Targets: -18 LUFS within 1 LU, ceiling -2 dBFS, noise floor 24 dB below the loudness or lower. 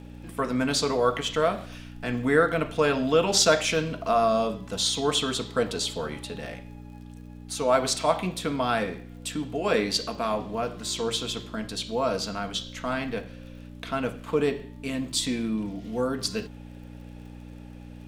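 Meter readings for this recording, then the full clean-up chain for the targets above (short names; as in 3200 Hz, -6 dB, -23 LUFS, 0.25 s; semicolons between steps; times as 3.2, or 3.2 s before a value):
ticks 42/s; hum 60 Hz; harmonics up to 300 Hz; hum level -40 dBFS; loudness -26.5 LUFS; peak -6.0 dBFS; loudness target -18.0 LUFS
-> de-click; de-hum 60 Hz, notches 5; gain +8.5 dB; limiter -2 dBFS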